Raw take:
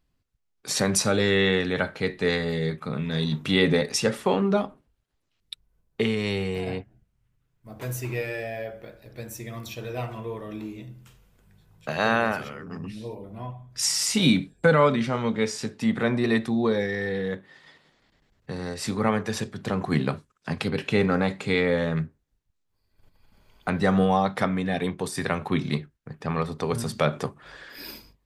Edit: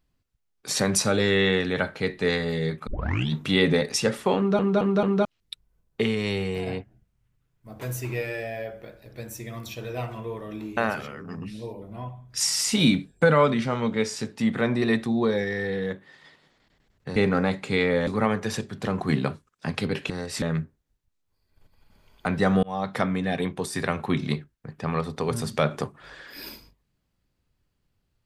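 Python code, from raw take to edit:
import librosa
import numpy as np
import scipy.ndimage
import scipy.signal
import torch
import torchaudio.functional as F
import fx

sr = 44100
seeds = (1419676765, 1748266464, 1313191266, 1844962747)

y = fx.edit(x, sr, fx.tape_start(start_s=2.87, length_s=0.45),
    fx.stutter_over(start_s=4.37, slice_s=0.22, count=4),
    fx.cut(start_s=10.77, length_s=1.42),
    fx.swap(start_s=18.58, length_s=0.32, other_s=20.93, other_length_s=0.91),
    fx.fade_in_span(start_s=24.05, length_s=0.48, curve='qsin'), tone=tone)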